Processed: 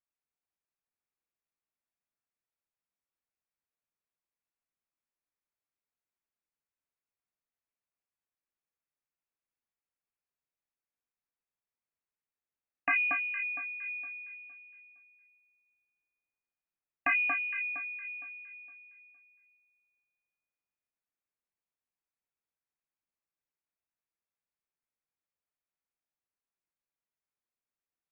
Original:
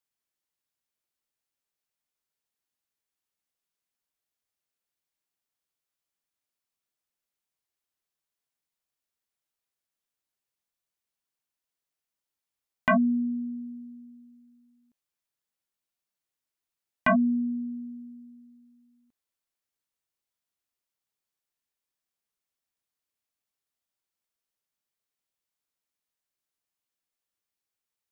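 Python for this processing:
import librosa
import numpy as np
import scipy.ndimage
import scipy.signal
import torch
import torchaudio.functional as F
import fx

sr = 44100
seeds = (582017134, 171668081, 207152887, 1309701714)

y = fx.freq_invert(x, sr, carrier_hz=2700)
y = fx.high_shelf(y, sr, hz=2100.0, db=10.0, at=(13.81, 14.35))
y = fx.echo_alternate(y, sr, ms=231, hz=1600.0, feedback_pct=52, wet_db=-3.5)
y = F.gain(torch.from_numpy(y), -6.5).numpy()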